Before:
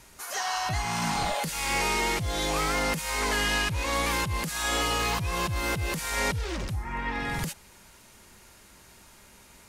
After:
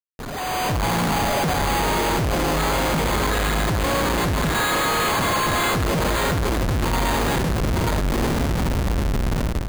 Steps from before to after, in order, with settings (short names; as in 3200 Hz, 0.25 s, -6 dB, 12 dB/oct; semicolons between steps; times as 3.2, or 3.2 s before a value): median filter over 15 samples; in parallel at +2 dB: compressor 12:1, threshold -42 dBFS, peak gain reduction 16.5 dB; on the sum: diffused feedback echo 0.988 s, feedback 57%, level -7 dB; careless resampling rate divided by 8×, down filtered, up hold; 4.55–5.74 pre-emphasis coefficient 0.97; Schmitt trigger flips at -37 dBFS; AGC gain up to 12.5 dB; on a send at -12 dB: reverb, pre-delay 47 ms; on the sum: gain -4 dB